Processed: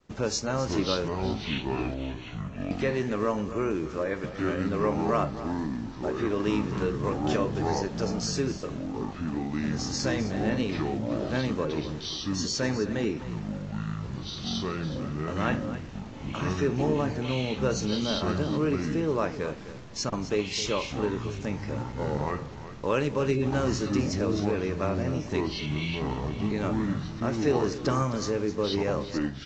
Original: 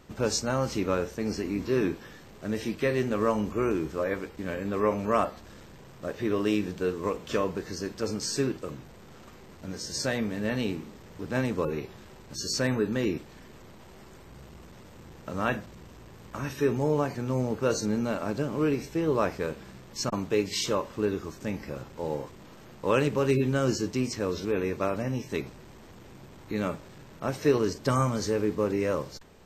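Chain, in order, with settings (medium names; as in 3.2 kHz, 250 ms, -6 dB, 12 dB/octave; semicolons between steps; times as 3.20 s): 1.08–2.71 s: two resonant band-passes 1.8 kHz, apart 0.9 oct; in parallel at +1 dB: compression, threshold -34 dBFS, peak gain reduction 15.5 dB; on the sum: expander -39 dBFS; on a send: delay 260 ms -13.5 dB; on the sum: ever faster or slower copies 411 ms, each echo -6 st, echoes 2; trim -4 dB; µ-law 128 kbps 16 kHz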